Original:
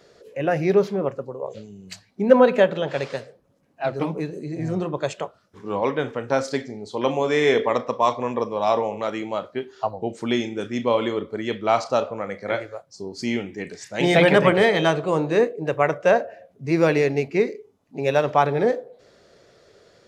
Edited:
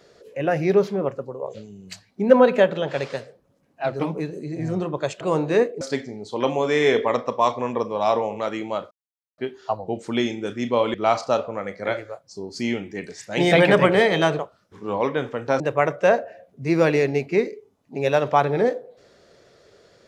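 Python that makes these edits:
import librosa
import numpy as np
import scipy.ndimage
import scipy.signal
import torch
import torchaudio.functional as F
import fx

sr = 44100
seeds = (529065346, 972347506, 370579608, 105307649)

y = fx.edit(x, sr, fx.swap(start_s=5.21, length_s=1.21, other_s=15.02, other_length_s=0.6),
    fx.insert_silence(at_s=9.52, length_s=0.47),
    fx.cut(start_s=11.08, length_s=0.49), tone=tone)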